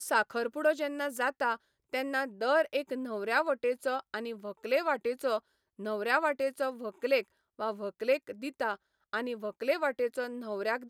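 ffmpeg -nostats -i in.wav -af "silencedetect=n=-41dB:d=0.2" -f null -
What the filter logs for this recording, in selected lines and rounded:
silence_start: 1.56
silence_end: 1.93 | silence_duration: 0.38
silence_start: 5.39
silence_end: 5.79 | silence_duration: 0.41
silence_start: 7.22
silence_end: 7.59 | silence_duration: 0.37
silence_start: 8.75
silence_end: 9.13 | silence_duration: 0.39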